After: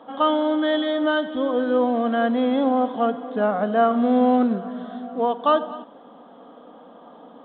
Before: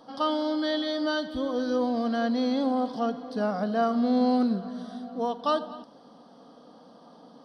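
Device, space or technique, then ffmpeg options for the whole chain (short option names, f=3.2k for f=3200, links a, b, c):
telephone: -af "highpass=250,lowpass=3.1k,volume=7.5dB" -ar 8000 -c:a pcm_alaw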